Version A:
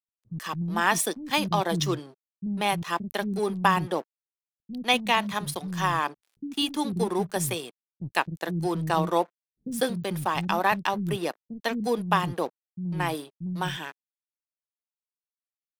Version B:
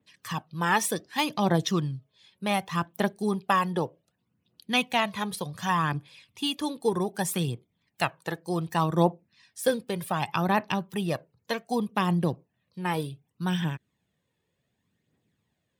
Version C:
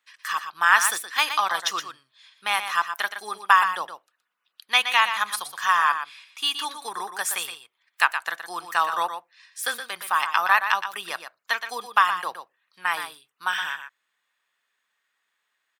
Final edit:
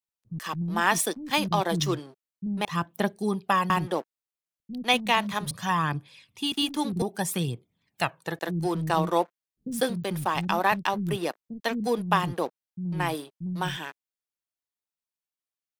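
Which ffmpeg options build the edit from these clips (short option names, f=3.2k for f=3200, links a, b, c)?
-filter_complex "[1:a]asplit=3[a][b][c];[0:a]asplit=4[d][e][f][g];[d]atrim=end=2.652[h];[a]atrim=start=2.648:end=3.702[i];[e]atrim=start=3.698:end=5.512[j];[b]atrim=start=5.508:end=6.522[k];[f]atrim=start=6.518:end=7.022[l];[c]atrim=start=7.018:end=8.392[m];[g]atrim=start=8.388[n];[h][i]acrossfade=d=0.004:c1=hsin:c2=hsin[o];[o][j]acrossfade=d=0.004:c1=hsin:c2=hsin[p];[p][k]acrossfade=d=0.004:c1=hsin:c2=hsin[q];[q][l]acrossfade=d=0.004:c1=hsin:c2=hsin[r];[r][m]acrossfade=d=0.004:c1=hsin:c2=hsin[s];[s][n]acrossfade=d=0.004:c1=hsin:c2=hsin"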